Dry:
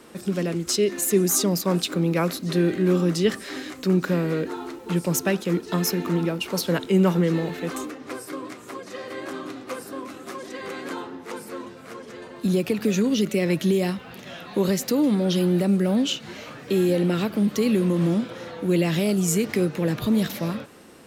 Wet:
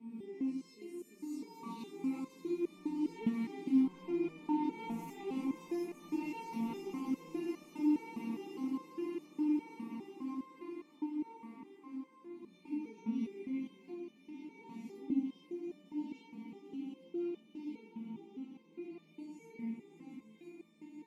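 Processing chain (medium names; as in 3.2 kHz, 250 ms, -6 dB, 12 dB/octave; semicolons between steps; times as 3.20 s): reverse spectral sustain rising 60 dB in 0.86 s; Doppler pass-by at 5.05 s, 5 m/s, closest 3.9 m; on a send: echo with a slow build-up 170 ms, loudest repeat 5, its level -12 dB; on the sum: overload inside the chain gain 24.5 dB; treble shelf 7.2 kHz +11.5 dB; compression 2.5:1, threshold -33 dBFS, peak gain reduction 10.5 dB; vowel filter u; bass shelf 320 Hz +7.5 dB; simulated room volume 290 m³, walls furnished, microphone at 1.6 m; resonator arpeggio 4.9 Hz 230–600 Hz; trim +16.5 dB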